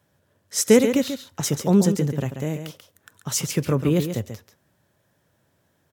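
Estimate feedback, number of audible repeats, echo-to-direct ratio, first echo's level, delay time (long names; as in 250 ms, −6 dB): repeats not evenly spaced, 1, −8.5 dB, −8.5 dB, 137 ms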